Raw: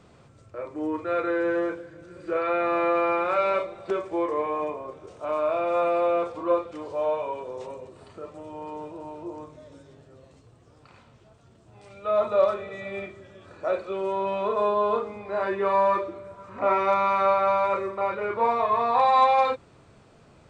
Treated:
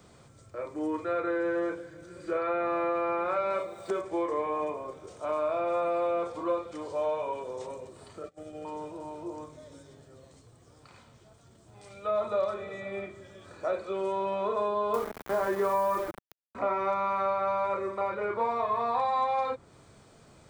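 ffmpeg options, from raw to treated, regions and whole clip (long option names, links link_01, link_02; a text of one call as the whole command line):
ffmpeg -i in.wav -filter_complex "[0:a]asettb=1/sr,asplit=3[link_01][link_02][link_03];[link_01]atrim=end=3.504[link_04];[link_02]atrim=start=3.5:end=4.01,asetpts=PTS-STARTPTS,afade=type=in:duration=0.004:curve=qsin,afade=type=out:start_time=0.506:duration=0.004:curve=qsin,highpass=76,aemphasis=mode=production:type=50fm[link_05];[link_03]atrim=start=4.006[link_06];[link_04][link_05]acrossfade=duration=0.004:curve1=hsin:curve2=qsin[link_07];[link_07][link_06]acrossfade=duration=0.004:curve1=qsin:curve2=hsin,asettb=1/sr,asplit=3[link_08][link_09][link_10];[link_08]atrim=end=8.234[link_11];[link_09]atrim=start=8.23:end=8.65,asetpts=PTS-STARTPTS,afade=type=in:duration=0.004:curve=qsin,afade=type=out:start_time=0.416:duration=0.004:curve=qsin,asuperstop=centerf=970:order=12:qfactor=3.7,agate=range=-20dB:threshold=-42dB:ratio=16:release=100:detection=peak[link_12];[link_10]atrim=start=8.646[link_13];[link_11][link_12]acrossfade=duration=0.004:curve1=hsin:curve2=qsin[link_14];[link_14][link_13]acrossfade=duration=0.004:curve1=qsin:curve2=hsin,asettb=1/sr,asplit=3[link_15][link_16][link_17];[link_15]atrim=end=14.944[link_18];[link_16]atrim=start=14.94:end=16.55,asetpts=PTS-STARTPTS,afade=type=in:duration=0.004:curve=qsin,afade=type=out:start_time=1.606:duration=0.004:curve=qsin,acontrast=59,aeval=exprs='val(0)*gte(abs(val(0)),0.0473)':channel_layout=same[link_19];[link_17]atrim=start=16.546[link_20];[link_18][link_19]acrossfade=duration=0.004:curve1=hsin:curve2=qsin[link_21];[link_21][link_20]acrossfade=duration=0.004:curve1=qsin:curve2=hsin,aemphasis=mode=production:type=50kf,bandreject=frequency=2700:width=11,acrossover=split=180|1900[link_22][link_23][link_24];[link_22]acompressor=threshold=-48dB:ratio=4[link_25];[link_23]acompressor=threshold=-24dB:ratio=4[link_26];[link_24]acompressor=threshold=-49dB:ratio=4[link_27];[link_25][link_26][link_27]amix=inputs=3:normalize=0,volume=-2dB" out.wav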